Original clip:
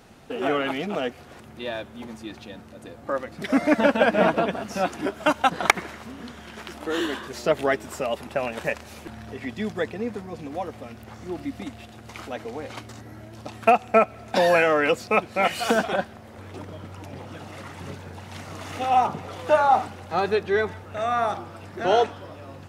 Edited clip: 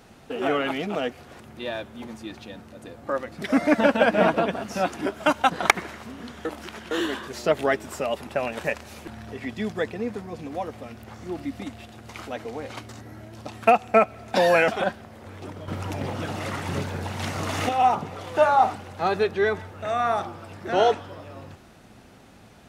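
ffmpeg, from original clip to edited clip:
ffmpeg -i in.wav -filter_complex "[0:a]asplit=6[link_01][link_02][link_03][link_04][link_05][link_06];[link_01]atrim=end=6.452[link_07];[link_02]atrim=start=6.448:end=6.912,asetpts=PTS-STARTPTS,areverse[link_08];[link_03]atrim=start=6.908:end=14.682[link_09];[link_04]atrim=start=15.798:end=16.802[link_10];[link_05]atrim=start=16.798:end=18.812,asetpts=PTS-STARTPTS,volume=8.5dB[link_11];[link_06]atrim=start=18.808[link_12];[link_07][link_08]acrossfade=duration=0.004:curve1=hsin:curve2=hsin[link_13];[link_13][link_09]acrossfade=duration=0.004:curve1=hsin:curve2=hsin[link_14];[link_14][link_10]acrossfade=duration=0.004:curve1=hsin:curve2=hsin[link_15];[link_15][link_11]acrossfade=duration=0.004:curve1=hsin:curve2=hsin[link_16];[link_16][link_12]acrossfade=duration=0.004:curve1=hsin:curve2=hsin" out.wav

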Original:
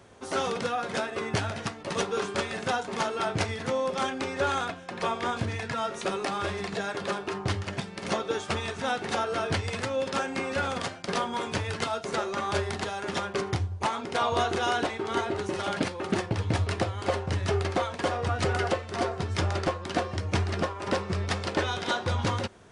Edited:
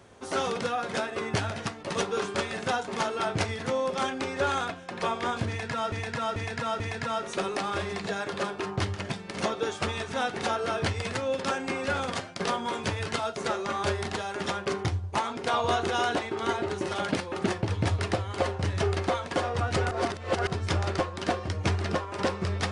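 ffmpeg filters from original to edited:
ffmpeg -i in.wav -filter_complex "[0:a]asplit=6[link_01][link_02][link_03][link_04][link_05][link_06];[link_01]atrim=end=5.922[link_07];[link_02]atrim=start=5.478:end=5.922[link_08];[link_03]atrim=start=5.478:end=5.922[link_09];[link_04]atrim=start=5.478:end=18.592[link_10];[link_05]atrim=start=18.588:end=19.152,asetpts=PTS-STARTPTS,areverse[link_11];[link_06]atrim=start=19.148[link_12];[link_07][link_08]acrossfade=duration=0.004:curve1=hsin:curve2=hsin[link_13];[link_13][link_09]acrossfade=duration=0.004:curve1=hsin:curve2=hsin[link_14];[link_14][link_10]acrossfade=duration=0.004:curve1=hsin:curve2=hsin[link_15];[link_15][link_11]acrossfade=duration=0.004:curve1=hsin:curve2=hsin[link_16];[link_16][link_12]acrossfade=duration=0.004:curve1=hsin:curve2=hsin" out.wav

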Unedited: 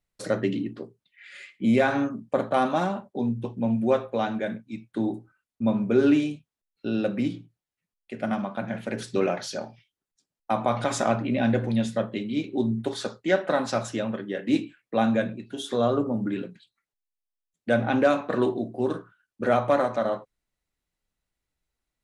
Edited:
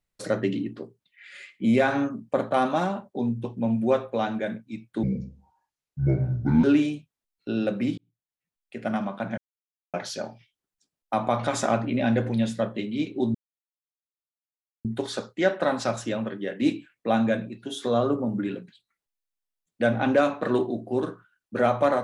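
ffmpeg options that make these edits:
ffmpeg -i in.wav -filter_complex "[0:a]asplit=7[link_01][link_02][link_03][link_04][link_05][link_06][link_07];[link_01]atrim=end=5.034[link_08];[link_02]atrim=start=5.03:end=6.01,asetpts=PTS-STARTPTS,asetrate=26901,aresample=44100,atrim=end_sample=70849,asetpts=PTS-STARTPTS[link_09];[link_03]atrim=start=6.006:end=7.35,asetpts=PTS-STARTPTS,afade=type=out:start_time=1.34:duration=0.004:curve=hsin[link_10];[link_04]atrim=start=7.35:end=8.75,asetpts=PTS-STARTPTS,afade=type=in:duration=0.82,afade=type=out:start_time=1.396:duration=0.004:curve=hsin[link_11];[link_05]atrim=start=8.75:end=9.31,asetpts=PTS-STARTPTS,volume=0[link_12];[link_06]atrim=start=9.31:end=12.72,asetpts=PTS-STARTPTS,afade=type=in:duration=0.004:curve=hsin,afade=type=out:start_time=3.406:duration=0.004:curve=hsin,apad=pad_dur=1.5[link_13];[link_07]atrim=start=12.72,asetpts=PTS-STARTPTS,afade=type=in:duration=0.004:curve=hsin[link_14];[link_08][link_09]acrossfade=duration=0.004:curve1=hsin:curve2=hsin[link_15];[link_10][link_11][link_12][link_13][link_14]concat=n=5:v=0:a=1[link_16];[link_15][link_16]acrossfade=duration=0.004:curve1=hsin:curve2=hsin" out.wav

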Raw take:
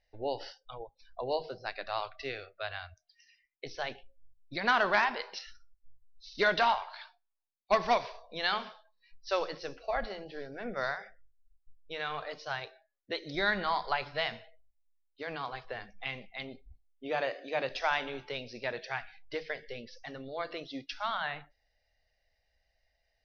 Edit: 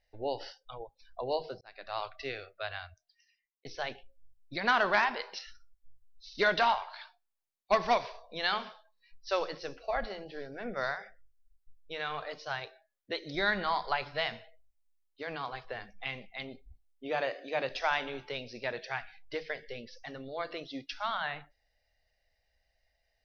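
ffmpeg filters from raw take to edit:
ffmpeg -i in.wav -filter_complex "[0:a]asplit=3[link_01][link_02][link_03];[link_01]atrim=end=1.61,asetpts=PTS-STARTPTS,afade=type=out:start_time=1.606:duration=0.004:curve=hsin[link_04];[link_02]atrim=start=1.61:end=3.65,asetpts=PTS-STARTPTS,afade=type=in:duration=0.44,afade=type=out:start_time=1.17:duration=0.87[link_05];[link_03]atrim=start=3.65,asetpts=PTS-STARTPTS,afade=type=in:duration=0.004:curve=hsin[link_06];[link_04][link_05][link_06]concat=n=3:v=0:a=1" out.wav

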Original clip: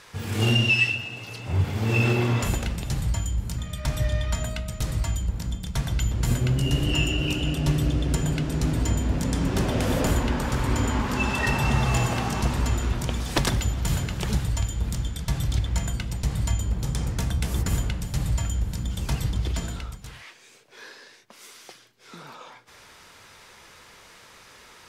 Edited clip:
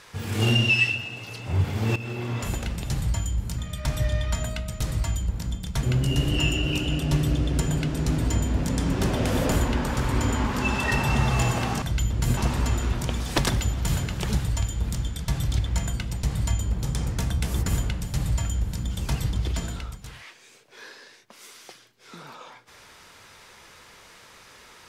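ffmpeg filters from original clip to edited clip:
ffmpeg -i in.wav -filter_complex "[0:a]asplit=5[link_01][link_02][link_03][link_04][link_05];[link_01]atrim=end=1.96,asetpts=PTS-STARTPTS,afade=type=out:start_time=1.956:duration=0.004:curve=hsin:silence=0.149624[link_06];[link_02]atrim=start=1.96:end=5.832,asetpts=PTS-STARTPTS,afade=type=in:duration=0.9:silence=0.149624[link_07];[link_03]atrim=start=6.378:end=12.372[link_08];[link_04]atrim=start=5.828:end=6.382[link_09];[link_05]atrim=start=12.368[link_10];[link_06][link_07]concat=n=2:v=0:a=1[link_11];[link_11][link_08]acrossfade=duration=0.004:curve1=hsin:curve2=hsin[link_12];[link_12][link_09]acrossfade=duration=0.004:curve1=hsin:curve2=hsin[link_13];[link_13][link_10]acrossfade=duration=0.004:curve1=hsin:curve2=hsin" out.wav

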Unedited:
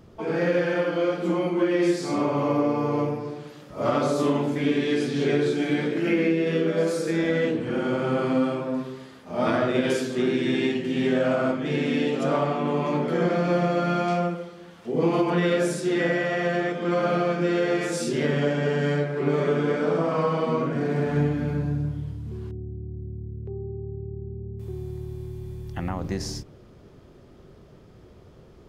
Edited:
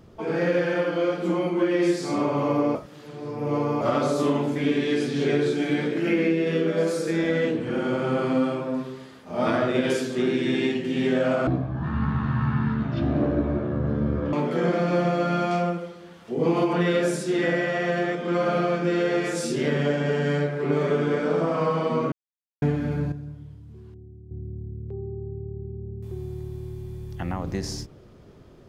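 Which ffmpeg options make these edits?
ffmpeg -i in.wav -filter_complex "[0:a]asplit=9[link_01][link_02][link_03][link_04][link_05][link_06][link_07][link_08][link_09];[link_01]atrim=end=2.752[link_10];[link_02]atrim=start=2.748:end=3.812,asetpts=PTS-STARTPTS,areverse[link_11];[link_03]atrim=start=3.808:end=11.474[link_12];[link_04]atrim=start=11.47:end=12.9,asetpts=PTS-STARTPTS,asetrate=22050,aresample=44100[link_13];[link_05]atrim=start=12.896:end=20.69,asetpts=PTS-STARTPTS,afade=type=out:start_time=7.79:duration=0.004:curve=hsin[link_14];[link_06]atrim=start=20.69:end=21.19,asetpts=PTS-STARTPTS,volume=0[link_15];[link_07]atrim=start=21.19:end=21.692,asetpts=PTS-STARTPTS,afade=type=in:duration=0.004:curve=hsin[link_16];[link_08]atrim=start=21.688:end=22.882,asetpts=PTS-STARTPTS,volume=-10dB[link_17];[link_09]atrim=start=22.878[link_18];[link_10][link_11]acrossfade=duration=0.004:curve1=hsin:curve2=hsin[link_19];[link_19][link_12]acrossfade=duration=0.004:curve1=hsin:curve2=hsin[link_20];[link_20][link_13]acrossfade=duration=0.004:curve1=hsin:curve2=hsin[link_21];[link_14][link_15][link_16]concat=n=3:v=0:a=1[link_22];[link_21][link_22]acrossfade=duration=0.004:curve1=hsin:curve2=hsin[link_23];[link_23][link_17]acrossfade=duration=0.004:curve1=hsin:curve2=hsin[link_24];[link_24][link_18]acrossfade=duration=0.004:curve1=hsin:curve2=hsin" out.wav

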